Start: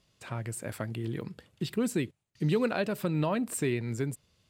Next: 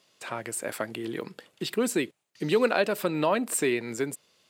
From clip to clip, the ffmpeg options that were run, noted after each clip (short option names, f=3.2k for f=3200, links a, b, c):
-af "highpass=340,volume=7dB"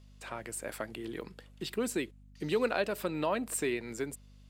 -af "aeval=exprs='val(0)+0.00398*(sin(2*PI*50*n/s)+sin(2*PI*2*50*n/s)/2+sin(2*PI*3*50*n/s)/3+sin(2*PI*4*50*n/s)/4+sin(2*PI*5*50*n/s)/5)':c=same,volume=-6.5dB"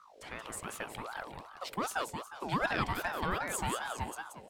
-filter_complex "[0:a]asplit=2[a][b];[b]aecho=0:1:179|358|537|716|895:0.501|0.195|0.0762|0.0297|0.0116[c];[a][c]amix=inputs=2:normalize=0,aeval=exprs='val(0)*sin(2*PI*860*n/s+860*0.45/2.6*sin(2*PI*2.6*n/s))':c=same"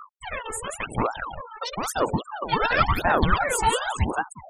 -af "aphaser=in_gain=1:out_gain=1:delay=2.3:decay=0.78:speed=0.96:type=sinusoidal,afftfilt=real='re*gte(hypot(re,im),0.0112)':imag='im*gte(hypot(re,im),0.0112)':win_size=1024:overlap=0.75,volume=7.5dB"